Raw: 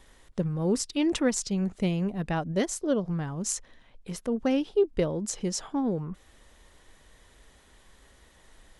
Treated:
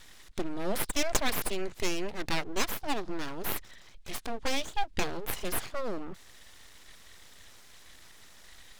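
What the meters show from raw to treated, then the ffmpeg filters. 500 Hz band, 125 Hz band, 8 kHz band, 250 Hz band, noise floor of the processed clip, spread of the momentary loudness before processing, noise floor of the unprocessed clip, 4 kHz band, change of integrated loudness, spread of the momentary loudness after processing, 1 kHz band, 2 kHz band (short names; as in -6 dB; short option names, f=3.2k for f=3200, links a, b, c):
-7.0 dB, -12.5 dB, -3.5 dB, -10.5 dB, -53 dBFS, 9 LU, -59 dBFS, +3.0 dB, -5.0 dB, 23 LU, +2.5 dB, +4.5 dB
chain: -filter_complex "[0:a]acrossover=split=5600[a][b];[b]acompressor=threshold=-41dB:ratio=4:attack=1:release=60[c];[a][c]amix=inputs=2:normalize=0,equalizer=f=250:t=o:w=1:g=-4,equalizer=f=500:t=o:w=1:g=-5,equalizer=f=2k:t=o:w=1:g=7,equalizer=f=4k:t=o:w=1:g=10,equalizer=f=8k:t=o:w=1:g=4,aeval=exprs='abs(val(0))':c=same,volume=1dB"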